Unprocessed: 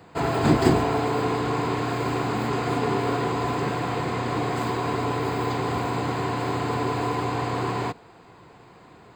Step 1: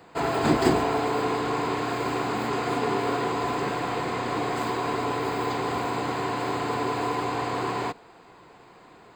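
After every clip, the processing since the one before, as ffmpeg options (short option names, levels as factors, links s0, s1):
-af "equalizer=f=100:t=o:w=2:g=-8.5"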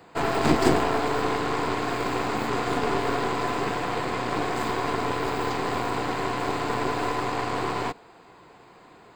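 -af "aeval=exprs='0.473*(cos(1*acos(clip(val(0)/0.473,-1,1)))-cos(1*PI/2))+0.0531*(cos(8*acos(clip(val(0)/0.473,-1,1)))-cos(8*PI/2))':c=same"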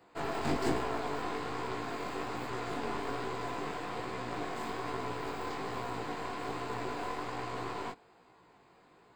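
-af "flanger=delay=15.5:depth=6.3:speed=1.2,volume=0.398"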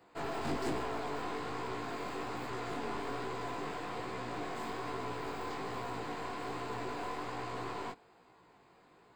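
-af "asoftclip=type=tanh:threshold=0.0473,volume=0.891"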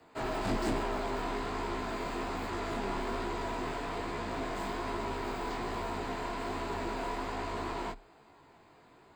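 -af "afreqshift=-34,volume=1.5"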